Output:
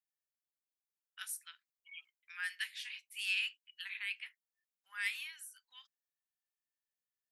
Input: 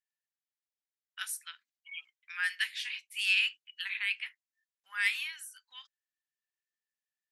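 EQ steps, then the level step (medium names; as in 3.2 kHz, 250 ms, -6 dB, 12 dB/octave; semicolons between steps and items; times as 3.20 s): treble shelf 10 kHz +8 dB; -8.0 dB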